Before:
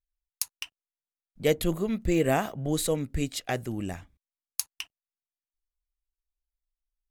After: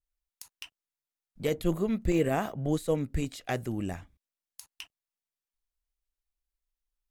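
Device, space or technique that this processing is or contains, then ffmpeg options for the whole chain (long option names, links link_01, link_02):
de-esser from a sidechain: -filter_complex "[0:a]asplit=2[link_01][link_02];[link_02]highpass=5500,apad=whole_len=313267[link_03];[link_01][link_03]sidechaincompress=threshold=-42dB:ratio=4:attack=1.4:release=26,adynamicequalizer=threshold=0.00501:dfrequency=2000:dqfactor=0.7:tfrequency=2000:tqfactor=0.7:attack=5:release=100:ratio=0.375:range=3:mode=cutabove:tftype=highshelf"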